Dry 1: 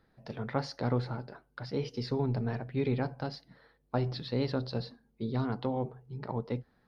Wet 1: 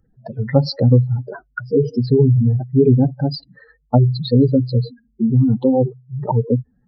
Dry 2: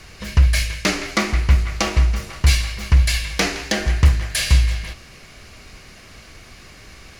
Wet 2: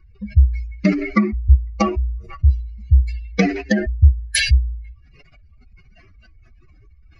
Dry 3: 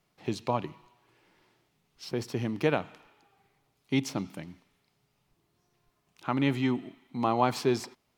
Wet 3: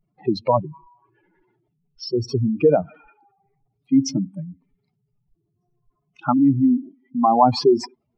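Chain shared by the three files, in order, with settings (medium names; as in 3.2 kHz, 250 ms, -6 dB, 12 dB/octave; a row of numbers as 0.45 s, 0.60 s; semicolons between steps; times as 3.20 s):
spectral contrast enhancement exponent 3; spectral noise reduction 10 dB; peak normalisation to -2 dBFS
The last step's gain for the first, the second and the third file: +18.5 dB, +5.0 dB, +11.5 dB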